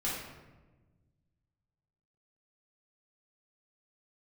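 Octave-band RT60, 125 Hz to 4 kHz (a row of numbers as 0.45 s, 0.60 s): 2.3 s, 1.9 s, 1.4 s, 1.1 s, 0.95 s, 0.70 s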